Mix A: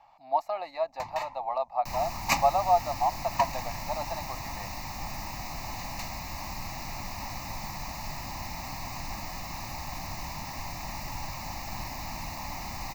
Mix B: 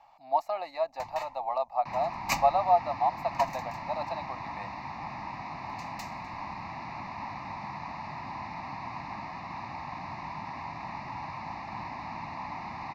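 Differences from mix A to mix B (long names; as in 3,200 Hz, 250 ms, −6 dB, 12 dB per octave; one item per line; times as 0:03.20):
first sound −3.5 dB
second sound: add loudspeaker in its box 130–3,500 Hz, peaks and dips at 550 Hz −5 dB, 990 Hz +5 dB, 3,100 Hz −9 dB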